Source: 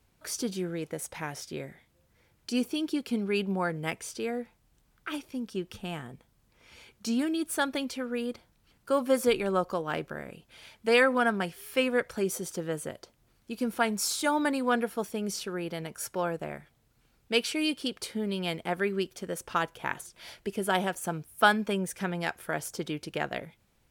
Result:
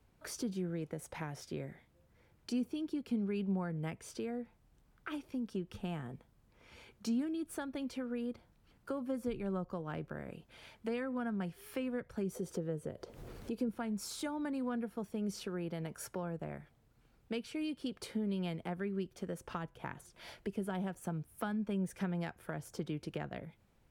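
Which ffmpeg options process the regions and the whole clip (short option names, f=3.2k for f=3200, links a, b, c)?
-filter_complex "[0:a]asettb=1/sr,asplit=3[a][b][c];[a]atrim=end=12.354[d];[b]atrim=start=12.35:end=13.69,asetpts=PTS-STARTPTS,afade=t=in:d=0.004:c=qsin,afade=t=out:st=1.336:d=0.004:c=qsin,equalizer=f=450:t=o:w=0.71:g=9,acompressor=mode=upward:threshold=-31dB:ratio=2.5:attack=3.2:release=140:knee=2.83:detection=peak[e];[c]atrim=start=13.686[f];[d][e]acrossfade=d=0.004:c1=hsin:c2=qsin[g];[g][f]acrossfade=d=0.004:c1=qsin:c2=hsin,highshelf=f=2.2k:g=-9,acrossover=split=210[h][i];[i]acompressor=threshold=-40dB:ratio=6[j];[h][j]amix=inputs=2:normalize=0"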